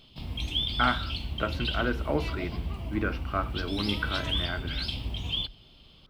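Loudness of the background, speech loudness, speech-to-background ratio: −32.5 LKFS, −32.5 LKFS, 0.0 dB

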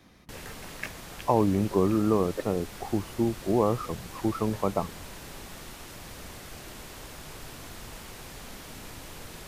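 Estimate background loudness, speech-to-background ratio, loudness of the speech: −43.0 LKFS, 15.5 dB, −27.5 LKFS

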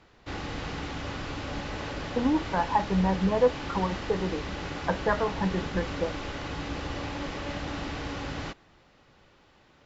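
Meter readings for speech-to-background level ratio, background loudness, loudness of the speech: 7.0 dB, −35.5 LKFS, −28.5 LKFS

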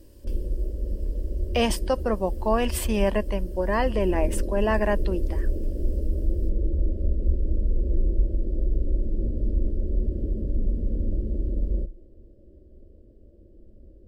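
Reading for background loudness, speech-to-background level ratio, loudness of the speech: −30.0 LKFS, 3.5 dB, −26.5 LKFS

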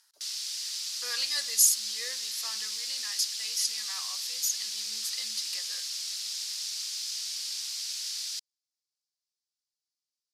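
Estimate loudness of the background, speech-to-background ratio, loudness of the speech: −32.5 LKFS, 3.0 dB, −29.5 LKFS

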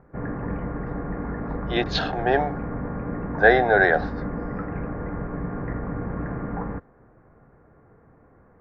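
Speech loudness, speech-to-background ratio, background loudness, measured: −21.0 LKFS, 10.0 dB, −31.0 LKFS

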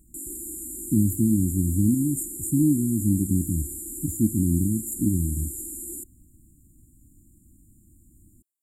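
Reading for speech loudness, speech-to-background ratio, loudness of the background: −24.5 LKFS, 9.0 dB, −33.5 LKFS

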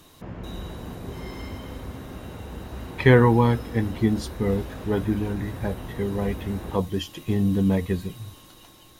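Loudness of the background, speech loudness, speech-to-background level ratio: −37.5 LKFS, −24.0 LKFS, 13.5 dB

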